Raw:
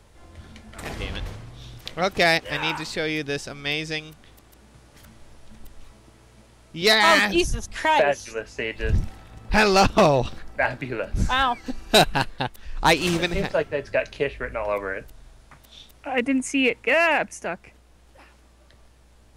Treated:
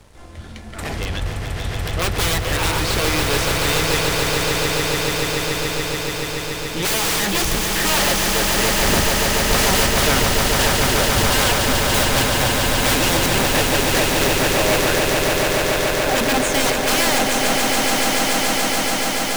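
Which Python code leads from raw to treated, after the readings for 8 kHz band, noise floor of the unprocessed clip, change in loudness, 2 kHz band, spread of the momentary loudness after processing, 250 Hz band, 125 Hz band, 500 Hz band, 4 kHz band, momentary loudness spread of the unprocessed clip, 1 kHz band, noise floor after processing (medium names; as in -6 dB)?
+16.5 dB, -54 dBFS, +5.0 dB, +4.5 dB, 8 LU, +5.0 dB, +8.0 dB, +4.0 dB, +8.5 dB, 16 LU, +3.5 dB, -27 dBFS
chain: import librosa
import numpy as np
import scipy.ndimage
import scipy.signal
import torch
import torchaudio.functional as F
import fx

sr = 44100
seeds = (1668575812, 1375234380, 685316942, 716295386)

y = (np.mod(10.0 ** (17.5 / 20.0) * x + 1.0, 2.0) - 1.0) / 10.0 ** (17.5 / 20.0)
y = fx.leveller(y, sr, passes=2)
y = fx.echo_swell(y, sr, ms=143, loudest=8, wet_db=-6.0)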